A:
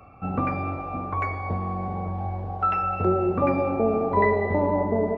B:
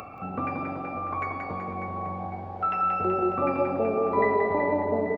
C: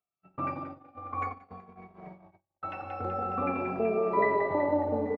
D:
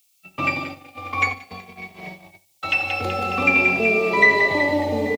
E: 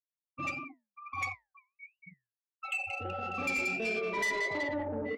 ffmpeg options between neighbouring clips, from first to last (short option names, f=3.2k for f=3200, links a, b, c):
-af "aecho=1:1:180|378|595.8|835.4|1099:0.631|0.398|0.251|0.158|0.1,acompressor=mode=upward:threshold=-25dB:ratio=2.5,highpass=f=230:p=1,volume=-3.5dB"
-filter_complex "[0:a]agate=range=-52dB:threshold=-30dB:ratio=16:detection=peak,asplit=2[a][b];[b]adelay=2.6,afreqshift=-0.5[c];[a][c]amix=inputs=2:normalize=1"
-filter_complex "[0:a]acrossover=split=120|400|1100[a][b][c][d];[c]alimiter=level_in=5.5dB:limit=-24dB:level=0:latency=1,volume=-5.5dB[e];[a][b][e][d]amix=inputs=4:normalize=0,aexciter=amount=10.2:drive=7.3:freq=2.2k,aecho=1:1:74|148|222:0.112|0.037|0.0122,volume=8dB"
-af "afftfilt=real='re*gte(hypot(re,im),0.126)':imag='im*gte(hypot(re,im),0.126)':win_size=1024:overlap=0.75,asoftclip=type=tanh:threshold=-17dB,flanger=delay=7.6:depth=5.9:regen=-74:speed=1.5:shape=triangular,volume=-6.5dB"